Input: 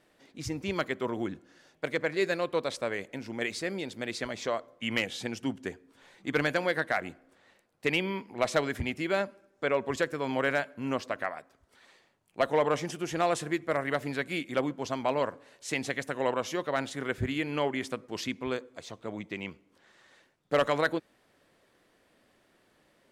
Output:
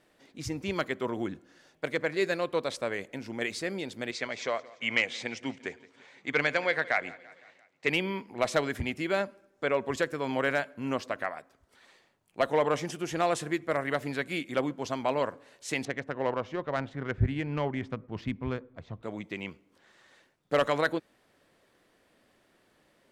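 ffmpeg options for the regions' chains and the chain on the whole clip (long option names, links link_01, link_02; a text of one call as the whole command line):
ffmpeg -i in.wav -filter_complex "[0:a]asettb=1/sr,asplit=3[link_01][link_02][link_03];[link_01]atrim=end=4.114[link_04];[link_02]atrim=start=4.11:end=7.88,asetpts=PTS-STARTPTS,afade=type=in:duration=0.004:curve=qsin,afade=type=out:start_time=3.766:duration=0.004:curve=qsin,highpass=150,equalizer=frequency=200:width_type=q:width=4:gain=-8,equalizer=frequency=320:width_type=q:width=4:gain=-6,equalizer=frequency=2200:width_type=q:width=4:gain=7,lowpass=frequency=7500:width=0.5412,lowpass=frequency=7500:width=1.3066,aecho=1:1:171|342|513|684:0.0891|0.0508|0.029|0.0165,atrim=end_sample=166257[link_05];[link_03]atrim=start=7.876[link_06];[link_04][link_05]acrossfade=duration=0.004:curve1=hsin:curve2=qsin[link_07];[link_07][link_06]acrossfade=duration=0.004:curve1=qsin:curve2=hsin,asettb=1/sr,asplit=3[link_08][link_09][link_10];[link_08]atrim=end=15.854[link_11];[link_09]atrim=start=15.85:end=19.03,asetpts=PTS-STARTPTS,afade=type=in:duration=0.004:curve=qsin,afade=type=out:start_time=3.176:duration=0.004:curve=qsin,asubboost=boost=7:cutoff=160,adynamicsmooth=sensitivity=1:basefreq=1800[link_12];[link_10]atrim=start=19.026[link_13];[link_11][link_12]acrossfade=duration=0.004:curve1=hsin:curve2=qsin[link_14];[link_14][link_13]acrossfade=duration=0.004:curve1=qsin:curve2=hsin" out.wav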